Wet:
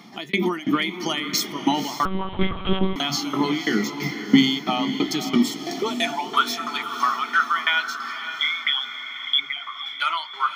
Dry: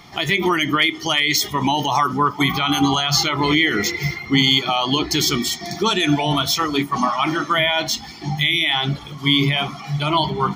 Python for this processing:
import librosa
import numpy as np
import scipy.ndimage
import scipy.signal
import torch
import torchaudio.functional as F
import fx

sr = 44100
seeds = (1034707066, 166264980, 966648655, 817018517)

p1 = fx.envelope_sharpen(x, sr, power=3.0, at=(8.28, 9.86))
p2 = fx.tremolo_shape(p1, sr, shape='saw_down', hz=3.0, depth_pct=100)
p3 = fx.filter_sweep_highpass(p2, sr, from_hz=220.0, to_hz=1400.0, start_s=5.38, end_s=6.43, q=4.1)
p4 = p3 + fx.echo_diffused(p3, sr, ms=536, feedback_pct=51, wet_db=-10.0, dry=0)
p5 = fx.lpc_monotone(p4, sr, seeds[0], pitch_hz=190.0, order=10, at=(2.05, 2.96))
y = p5 * 10.0 ** (-3.0 / 20.0)